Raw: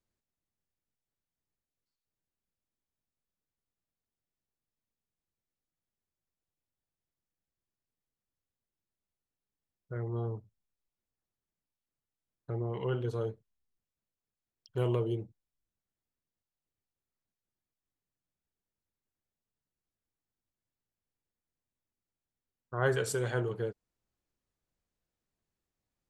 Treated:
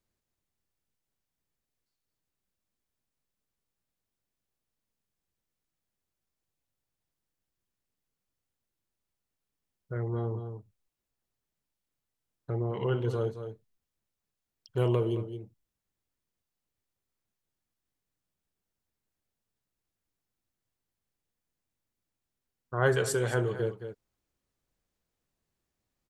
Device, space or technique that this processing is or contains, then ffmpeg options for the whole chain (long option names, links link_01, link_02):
ducked delay: -filter_complex "[0:a]asplit=3[link_01][link_02][link_03];[link_02]adelay=218,volume=-7dB[link_04];[link_03]apad=whole_len=1160237[link_05];[link_04][link_05]sidechaincompress=threshold=-32dB:ratio=8:attack=5.2:release=755[link_06];[link_01][link_06]amix=inputs=2:normalize=0,volume=3.5dB"